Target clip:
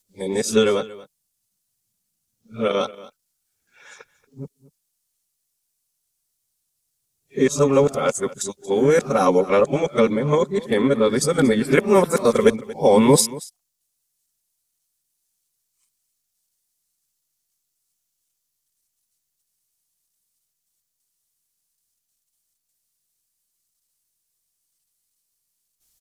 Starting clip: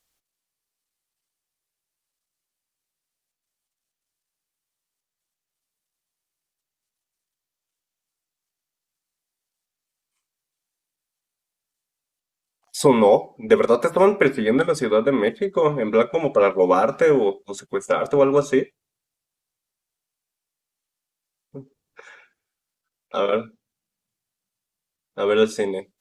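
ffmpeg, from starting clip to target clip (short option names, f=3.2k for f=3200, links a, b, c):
-af "areverse,bass=f=250:g=8,treble=f=4k:g=13,aecho=1:1:232:0.112,volume=-1dB"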